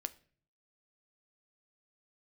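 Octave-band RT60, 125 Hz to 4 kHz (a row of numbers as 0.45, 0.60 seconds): 0.85, 0.65, 0.50, 0.40, 0.45, 0.40 seconds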